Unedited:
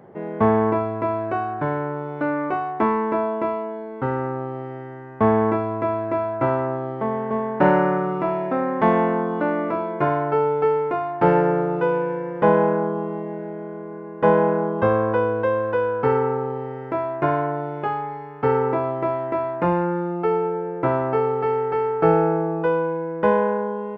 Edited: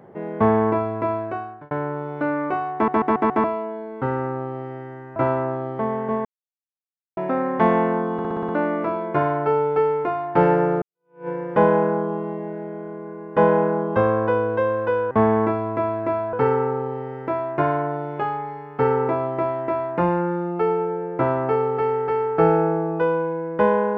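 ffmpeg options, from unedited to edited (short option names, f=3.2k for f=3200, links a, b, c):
-filter_complex "[0:a]asplit=19[a][b][c][d][e][f][g][h][i][j][k][l][m][n][o][p][q][r][s];[a]atrim=end=1.71,asetpts=PTS-STARTPTS,afade=t=out:st=1.12:d=0.59[t];[b]atrim=start=1.71:end=2.882,asetpts=PTS-STARTPTS,afade=t=in:d=0.004:c=hsin[u];[c]atrim=start=2.738:end=2.882[v];[d]atrim=start=2.738:end=2.882[w];[e]atrim=start=2.738:end=2.882[x];[f]atrim=start=2.738:end=2.882[y];[g]atrim=start=3.438:end=5.162[z];[h]atrim=start=6.378:end=7.47,asetpts=PTS-STARTPTS,afade=t=out:st=1.088:d=0.004:c=hsin[aa];[i]atrim=start=7.47:end=8.39,asetpts=PTS-STARTPTS,volume=0[ab];[j]atrim=start=8.39:end=9.412,asetpts=PTS-STARTPTS,afade=t=in:d=0.004:c=hsin[ac];[k]atrim=start=9.348:end=9.412[ad];[l]atrim=start=9.348:end=9.412[ae];[m]atrim=start=9.348:end=9.412[af];[n]atrim=start=9.348:end=9.412[ag];[o]atrim=start=9.348:end=9.412[ah];[p]atrim=start=9.348:end=11.68,asetpts=PTS-STARTPTS,afade=t=out:st=2.328:d=0.004:c=hsin[ai];[q]atrim=start=11.68:end=15.972,asetpts=PTS-STARTPTS,afade=t=in:d=0.46:c=exp[aj];[r]atrim=start=5.158:end=6.382[ak];[s]atrim=start=15.968[al];[t][u]concat=n=2:v=0:a=1[am];[am][v]acrossfade=d=0.004:c1=hsin:c2=hsin[an];[an][w]acrossfade=d=0.004:c1=hsin:c2=hsin[ao];[ao][x]acrossfade=d=0.004:c1=hsin:c2=hsin[ap];[ap][y]acrossfade=d=0.004:c1=hsin:c2=hsin[aq];[aq][z]acrossfade=d=0.004:c1=hsin:c2=hsin[ar];[aa][ab][ac]concat=n=3:v=0:a=1[as];[ar][as]acrossfade=d=0.004:c1=hsin:c2=hsin[at];[at][ad]acrossfade=d=0.004:c1=hsin:c2=hsin[au];[au][ae]acrossfade=d=0.004:c1=hsin:c2=hsin[av];[av][af]acrossfade=d=0.004:c1=hsin:c2=hsin[aw];[aw][ag]acrossfade=d=0.004:c1=hsin:c2=hsin[ax];[ax][ah]acrossfade=d=0.004:c1=hsin:c2=hsin[ay];[ai][aj]concat=n=2:v=0:a=1[az];[ay][az]acrossfade=d=0.004:c1=hsin:c2=hsin[ba];[ba][ak]acrossfade=d=0.004:c1=hsin:c2=hsin[bb];[bb][al]acrossfade=d=0.004:c1=hsin:c2=hsin"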